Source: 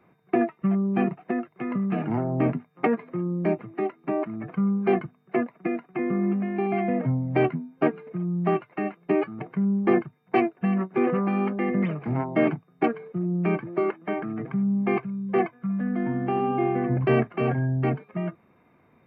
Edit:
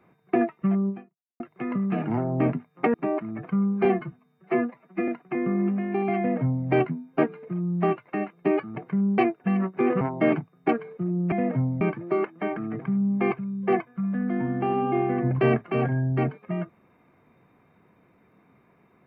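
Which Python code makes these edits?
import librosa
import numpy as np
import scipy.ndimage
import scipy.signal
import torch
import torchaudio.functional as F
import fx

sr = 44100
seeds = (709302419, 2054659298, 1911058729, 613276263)

y = fx.edit(x, sr, fx.fade_out_span(start_s=0.89, length_s=0.51, curve='exp'),
    fx.cut(start_s=2.94, length_s=1.05),
    fx.stretch_span(start_s=4.9, length_s=0.82, factor=1.5),
    fx.duplicate(start_s=6.82, length_s=0.49, to_s=13.47),
    fx.cut(start_s=9.82, length_s=0.53),
    fx.cut(start_s=11.18, length_s=0.98), tone=tone)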